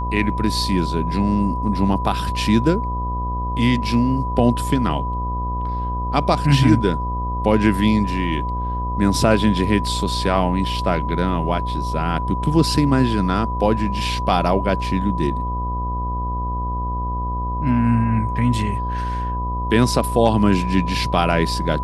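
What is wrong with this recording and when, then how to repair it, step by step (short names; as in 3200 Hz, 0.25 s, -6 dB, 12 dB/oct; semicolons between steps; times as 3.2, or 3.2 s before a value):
buzz 60 Hz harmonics 20 -25 dBFS
tone 990 Hz -25 dBFS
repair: de-hum 60 Hz, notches 20; notch 990 Hz, Q 30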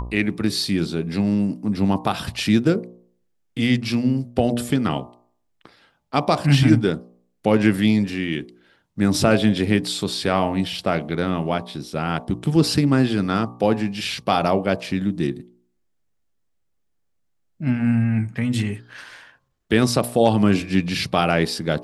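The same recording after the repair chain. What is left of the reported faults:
none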